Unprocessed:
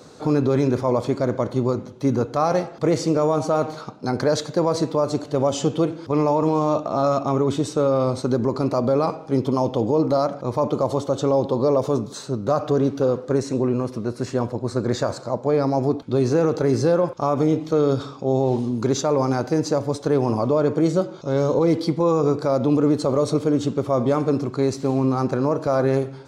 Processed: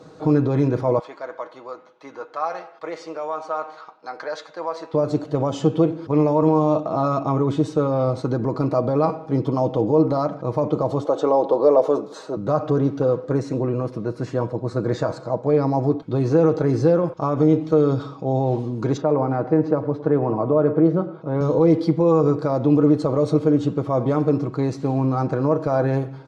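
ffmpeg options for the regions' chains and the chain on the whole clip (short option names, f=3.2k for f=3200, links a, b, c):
-filter_complex "[0:a]asettb=1/sr,asplit=3[a][b][c];[a]atrim=end=0.994[d];[b]atrim=start=0.99:end=4.94,asetpts=PTS-STARTPTS,afade=t=in:d=0.004:c=qsin,afade=t=out:st=3.946:d=0.004:c=qsin,highpass=1k,aemphasis=mode=reproduction:type=50fm,asplit=2[e][f];[f]adelay=12,volume=-13dB[g];[e][g]amix=inputs=2:normalize=0,atrim=end_sample=174195[h];[c]atrim=start=4.936[i];[d][h]acrossfade=d=0.004:c1=hsin:c2=qsin[j];[j][i]acrossfade=d=0.004:c1=qsin:c2=hsin,asettb=1/sr,asplit=3[k][l][m];[k]atrim=end=11.054[n];[l]atrim=start=11.05:end=12.37,asetpts=PTS-STARTPTS,afade=t=in:d=0.004:c=qsin,afade=t=out:st=1.316:d=0.004:c=qsin,highpass=380,equalizer=f=550:w=0.59:g=6.5[o];[m]atrim=start=12.366[p];[n][o]acrossfade=d=0.004:c1=hsin:c2=qsin[q];[q][p]acrossfade=d=0.004:c1=qsin:c2=hsin,asettb=1/sr,asplit=3[r][s][t];[r]atrim=end=18.974[u];[s]atrim=start=18.97:end=21.41,asetpts=PTS-STARTPTS,afade=t=in:d=0.004:c=qsin,afade=t=out:st=2.436:d=0.004:c=qsin,highpass=120,lowpass=2k,aecho=1:1:109:0.158,atrim=end_sample=107604[v];[t]atrim=start=21.406[w];[u][v]acrossfade=d=0.004:c1=hsin:c2=qsin[x];[x][w]acrossfade=d=0.004:c1=qsin:c2=hsin,lowpass=f=1.9k:p=1,aecho=1:1:6.3:0.51"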